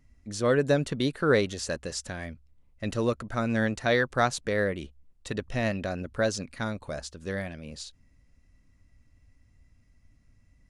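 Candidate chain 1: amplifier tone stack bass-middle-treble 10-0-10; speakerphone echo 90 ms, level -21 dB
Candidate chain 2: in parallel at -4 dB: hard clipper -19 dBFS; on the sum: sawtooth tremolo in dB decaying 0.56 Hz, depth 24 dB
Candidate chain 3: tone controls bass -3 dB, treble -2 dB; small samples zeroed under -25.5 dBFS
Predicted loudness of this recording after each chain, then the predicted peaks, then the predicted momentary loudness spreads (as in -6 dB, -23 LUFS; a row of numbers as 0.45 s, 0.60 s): -38.5 LUFS, -32.0 LUFS, -29.5 LUFS; -17.5 dBFS, -13.0 dBFS, -9.5 dBFS; 12 LU, 20 LU, 18 LU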